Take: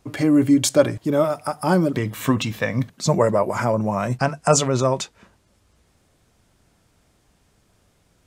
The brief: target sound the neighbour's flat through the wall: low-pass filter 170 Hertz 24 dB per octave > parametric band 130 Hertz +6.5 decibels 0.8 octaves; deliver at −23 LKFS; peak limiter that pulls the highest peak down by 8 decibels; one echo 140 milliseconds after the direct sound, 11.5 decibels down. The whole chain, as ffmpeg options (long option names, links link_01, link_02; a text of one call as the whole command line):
ffmpeg -i in.wav -af "alimiter=limit=-10dB:level=0:latency=1,lowpass=frequency=170:width=0.5412,lowpass=frequency=170:width=1.3066,equalizer=frequency=130:width_type=o:width=0.8:gain=6.5,aecho=1:1:140:0.266,volume=2dB" out.wav